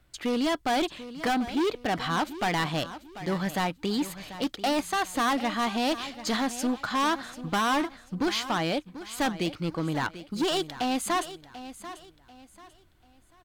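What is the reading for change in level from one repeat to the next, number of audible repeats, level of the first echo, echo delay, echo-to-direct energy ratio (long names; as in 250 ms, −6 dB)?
−10.0 dB, 3, −14.0 dB, 740 ms, −13.5 dB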